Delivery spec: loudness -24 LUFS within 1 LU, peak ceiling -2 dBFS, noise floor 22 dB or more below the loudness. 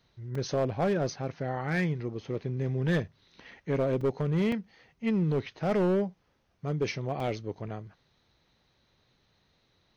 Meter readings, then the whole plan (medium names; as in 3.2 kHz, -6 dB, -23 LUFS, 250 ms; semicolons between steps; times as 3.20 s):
clipped samples 1.6%; clipping level -21.5 dBFS; dropouts 4; longest dropout 3.4 ms; loudness -30.5 LUFS; peak level -21.5 dBFS; loudness target -24.0 LUFS
-> clip repair -21.5 dBFS; interpolate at 0.35/4.01/4.52/7.20 s, 3.4 ms; trim +6.5 dB